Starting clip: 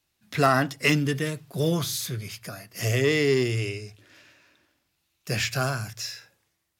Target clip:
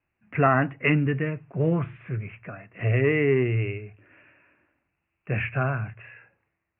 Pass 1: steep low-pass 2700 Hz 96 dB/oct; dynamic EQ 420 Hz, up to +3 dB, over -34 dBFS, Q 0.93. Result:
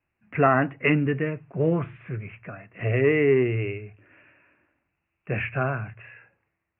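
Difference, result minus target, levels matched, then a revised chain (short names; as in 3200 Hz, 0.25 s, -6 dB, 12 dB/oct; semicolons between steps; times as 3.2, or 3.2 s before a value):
125 Hz band -2.5 dB
steep low-pass 2700 Hz 96 dB/oct; dynamic EQ 110 Hz, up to +3 dB, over -34 dBFS, Q 0.93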